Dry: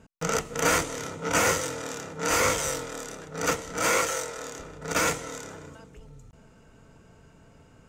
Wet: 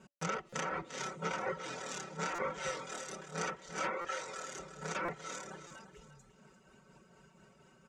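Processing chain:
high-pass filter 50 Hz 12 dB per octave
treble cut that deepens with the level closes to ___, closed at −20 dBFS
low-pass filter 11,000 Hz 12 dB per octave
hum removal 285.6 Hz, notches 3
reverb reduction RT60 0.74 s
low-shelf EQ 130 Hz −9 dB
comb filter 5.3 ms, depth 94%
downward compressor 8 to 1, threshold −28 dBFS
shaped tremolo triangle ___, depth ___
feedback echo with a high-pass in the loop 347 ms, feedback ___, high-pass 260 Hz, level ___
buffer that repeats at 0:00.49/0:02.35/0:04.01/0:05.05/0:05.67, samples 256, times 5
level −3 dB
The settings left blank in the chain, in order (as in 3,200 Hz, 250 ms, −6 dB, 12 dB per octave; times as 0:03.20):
1,500 Hz, 4.2 Hz, 50%, 28%, −11 dB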